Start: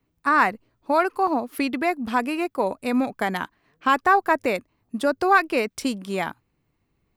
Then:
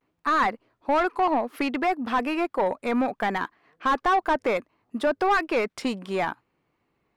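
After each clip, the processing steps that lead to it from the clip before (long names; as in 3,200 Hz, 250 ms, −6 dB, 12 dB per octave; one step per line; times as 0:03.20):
pitch vibrato 0.64 Hz 62 cents
mid-hump overdrive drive 22 dB, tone 1,400 Hz, clips at −4 dBFS
level −8 dB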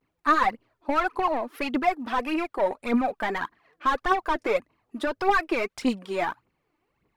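phase shifter 1.7 Hz, delay 3.5 ms, feedback 62%
level −3 dB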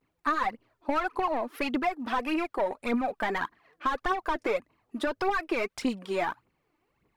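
downward compressor, threshold −24 dBFS, peak gain reduction 8.5 dB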